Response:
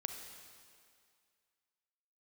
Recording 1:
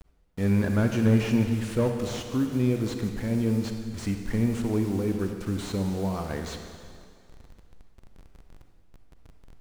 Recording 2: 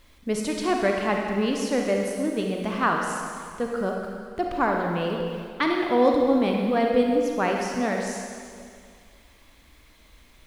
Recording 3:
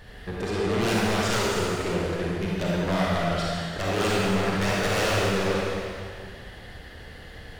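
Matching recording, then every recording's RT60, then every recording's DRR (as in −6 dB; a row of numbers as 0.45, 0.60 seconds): 1; 2.2, 2.2, 2.2 seconds; 4.5, 0.5, −5.5 decibels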